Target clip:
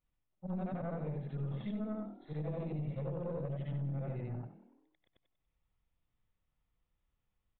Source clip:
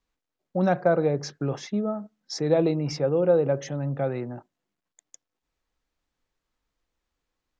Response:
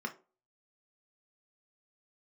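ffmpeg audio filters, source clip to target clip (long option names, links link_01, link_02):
-filter_complex "[0:a]afftfilt=real='re':imag='-im':win_size=8192:overlap=0.75,lowshelf=frequency=210:width_type=q:width=1.5:gain=8,bandreject=frequency=1600:width=10,acompressor=threshold=-32dB:ratio=20,asplit=6[link_01][link_02][link_03][link_04][link_05][link_06];[link_02]adelay=95,afreqshift=39,volume=-16dB[link_07];[link_03]adelay=190,afreqshift=78,volume=-20.9dB[link_08];[link_04]adelay=285,afreqshift=117,volume=-25.8dB[link_09];[link_05]adelay=380,afreqshift=156,volume=-30.6dB[link_10];[link_06]adelay=475,afreqshift=195,volume=-35.5dB[link_11];[link_01][link_07][link_08][link_09][link_10][link_11]amix=inputs=6:normalize=0,aeval=exprs='(tanh(28.2*val(0)+0.5)-tanh(0.5))/28.2':channel_layout=same,aresample=8000,aresample=44100"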